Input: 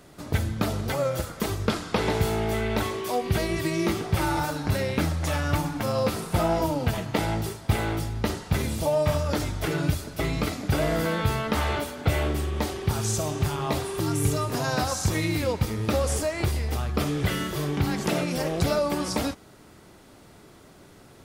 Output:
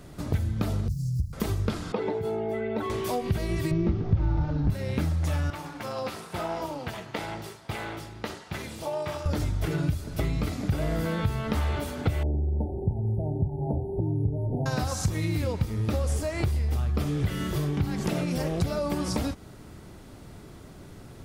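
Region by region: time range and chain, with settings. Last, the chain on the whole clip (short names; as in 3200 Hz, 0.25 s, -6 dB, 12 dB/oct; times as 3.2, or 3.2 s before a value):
0.88–1.33 median filter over 15 samples + Chebyshev band-stop 230–4900 Hz, order 4 + comb 2 ms, depth 67%
1.92–2.9 spectral contrast raised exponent 1.7 + HPF 320 Hz
3.71–4.7 CVSD 32 kbps + tilt -3.5 dB/oct + hard clip -7 dBFS
5.5–9.26 high shelf 6200 Hz -9.5 dB + AM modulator 250 Hz, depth 40% + HPF 940 Hz 6 dB/oct
12.23–14.66 median filter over 25 samples + brick-wall FIR band-stop 930–9600 Hz + air absorption 61 m
whole clip: low shelf 200 Hz +11.5 dB; compressor 3:1, threshold -26 dBFS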